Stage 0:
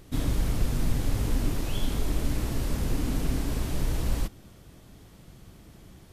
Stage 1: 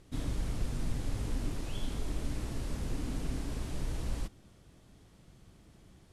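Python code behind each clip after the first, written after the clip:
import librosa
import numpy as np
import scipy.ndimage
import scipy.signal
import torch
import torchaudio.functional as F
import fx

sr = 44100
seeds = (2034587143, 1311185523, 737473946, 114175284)

y = scipy.signal.sosfilt(scipy.signal.butter(4, 11000.0, 'lowpass', fs=sr, output='sos'), x)
y = y * 10.0 ** (-8.0 / 20.0)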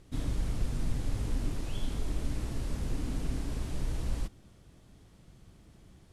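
y = fx.low_shelf(x, sr, hz=160.0, db=3.0)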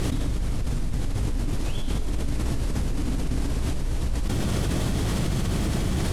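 y = fx.env_flatten(x, sr, amount_pct=100)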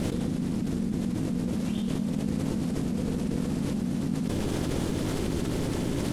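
y = x * np.sin(2.0 * np.pi * 210.0 * np.arange(len(x)) / sr)
y = y * 10.0 ** (-1.5 / 20.0)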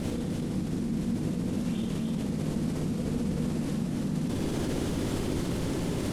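y = fx.echo_multitap(x, sr, ms=(58, 301), db=(-3.5, -3.5))
y = y * 10.0 ** (-4.0 / 20.0)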